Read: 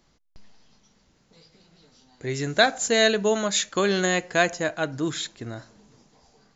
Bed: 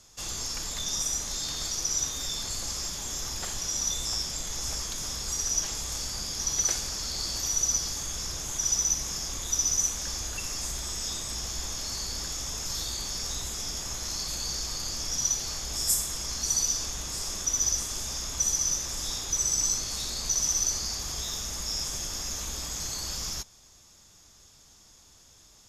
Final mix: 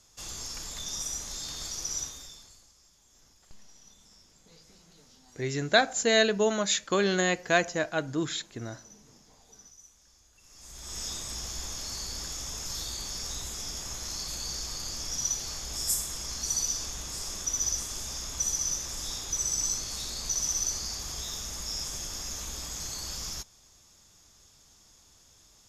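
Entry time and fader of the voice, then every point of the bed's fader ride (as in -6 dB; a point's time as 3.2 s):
3.15 s, -3.0 dB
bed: 1.99 s -5 dB
2.73 s -28 dB
10.34 s -28 dB
10.98 s -3 dB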